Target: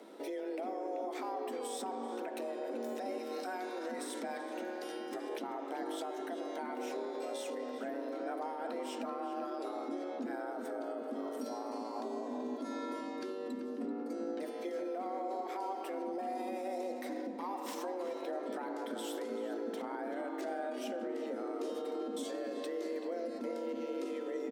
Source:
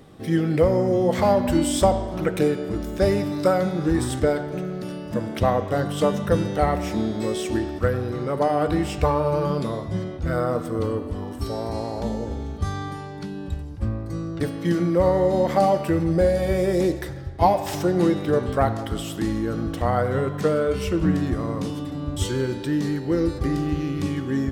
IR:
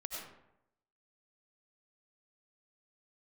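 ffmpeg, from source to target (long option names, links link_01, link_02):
-filter_complex "[0:a]asettb=1/sr,asplit=3[link_01][link_02][link_03];[link_01]atrim=end=3.184[link_04];[link_02]atrim=start=3.18:end=5.29,asetpts=PTS-STARTPTS,afade=type=in:duration=0.004:curve=qsin,afade=type=out:start_time=2.106:duration=0.004:curve=qsin,equalizer=frequency=240:width_type=o:width=3:gain=-8.5[link_05];[link_03]atrim=start=5.286[link_06];[link_04][link_05]acrossfade=duration=0.004:curve1=hsin:curve2=qsin[link_07];[link_07][link_06]acrossfade=duration=0.004:curve1=qsin:curve2=hsin,acompressor=threshold=-30dB:ratio=5,alimiter=level_in=3.5dB:limit=-24dB:level=0:latency=1:release=37,volume=-3.5dB,afreqshift=180,asplit=2[link_08][link_09];[link_09]adelay=385,lowpass=frequency=1700:poles=1,volume=-6dB,asplit=2[link_10][link_11];[link_11]adelay=385,lowpass=frequency=1700:poles=1,volume=0.48,asplit=2[link_12][link_13];[link_13]adelay=385,lowpass=frequency=1700:poles=1,volume=0.48,asplit=2[link_14][link_15];[link_15]adelay=385,lowpass=frequency=1700:poles=1,volume=0.48,asplit=2[link_16][link_17];[link_17]adelay=385,lowpass=frequency=1700:poles=1,volume=0.48,asplit=2[link_18][link_19];[link_19]adelay=385,lowpass=frequency=1700:poles=1,volume=0.48[link_20];[link_08][link_10][link_12][link_14][link_16][link_18][link_20]amix=inputs=7:normalize=0,volume=-5dB"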